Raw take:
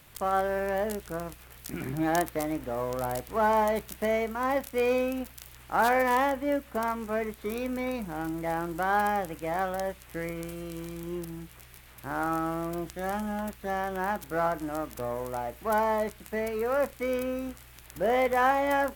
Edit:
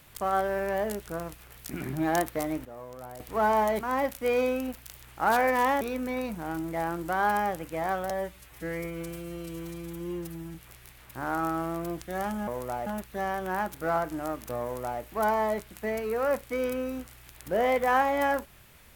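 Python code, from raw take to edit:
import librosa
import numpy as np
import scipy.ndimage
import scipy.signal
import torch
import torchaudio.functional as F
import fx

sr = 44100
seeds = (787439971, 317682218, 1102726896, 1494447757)

y = fx.edit(x, sr, fx.clip_gain(start_s=2.65, length_s=0.55, db=-11.5),
    fx.cut(start_s=3.81, length_s=0.52),
    fx.cut(start_s=6.33, length_s=1.18),
    fx.stretch_span(start_s=9.8, length_s=1.63, factor=1.5),
    fx.duplicate(start_s=15.12, length_s=0.39, to_s=13.36), tone=tone)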